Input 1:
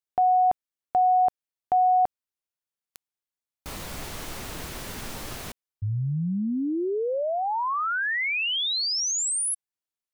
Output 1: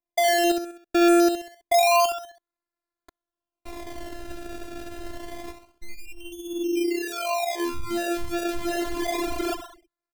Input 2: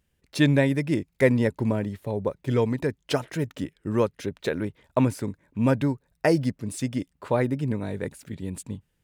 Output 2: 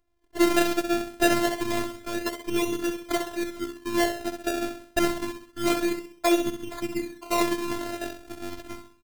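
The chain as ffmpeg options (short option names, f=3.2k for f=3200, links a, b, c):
-af "aecho=1:1:65|130|195|260|325:0.447|0.197|0.0865|0.0381|0.0167,acrusher=samples=28:mix=1:aa=0.000001:lfo=1:lforange=28:lforate=0.27,afftfilt=real='hypot(re,im)*cos(PI*b)':imag='0':win_size=512:overlap=0.75,volume=2.5dB"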